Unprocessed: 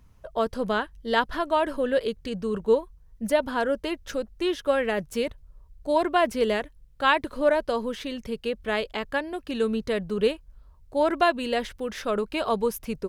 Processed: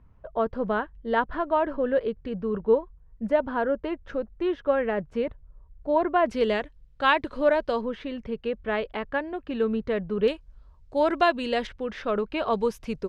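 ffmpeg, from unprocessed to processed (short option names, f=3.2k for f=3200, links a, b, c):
-af "asetnsamples=n=441:p=0,asendcmd='6.26 lowpass f 4400;7.81 lowpass f 2200;10.28 lowpass f 5700;11.67 lowpass f 3000;12.53 lowpass f 5400',lowpass=1.7k"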